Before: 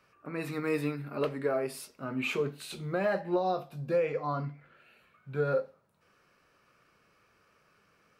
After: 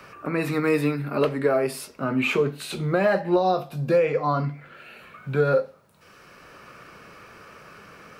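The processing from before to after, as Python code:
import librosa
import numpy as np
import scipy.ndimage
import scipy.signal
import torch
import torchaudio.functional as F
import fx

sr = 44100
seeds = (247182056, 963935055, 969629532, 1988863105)

y = fx.band_squash(x, sr, depth_pct=40)
y = y * 10.0 ** (9.0 / 20.0)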